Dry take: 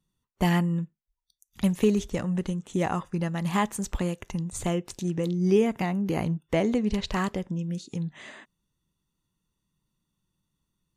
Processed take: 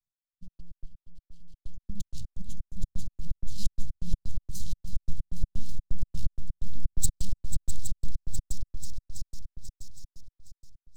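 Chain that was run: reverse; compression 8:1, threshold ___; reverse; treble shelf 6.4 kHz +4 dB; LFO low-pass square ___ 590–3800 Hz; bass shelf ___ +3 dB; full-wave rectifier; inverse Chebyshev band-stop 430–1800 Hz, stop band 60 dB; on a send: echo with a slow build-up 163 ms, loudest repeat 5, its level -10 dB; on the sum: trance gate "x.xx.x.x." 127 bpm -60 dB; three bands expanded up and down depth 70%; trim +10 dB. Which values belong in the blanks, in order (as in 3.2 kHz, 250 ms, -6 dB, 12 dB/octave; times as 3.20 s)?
-37 dBFS, 2 Hz, 220 Hz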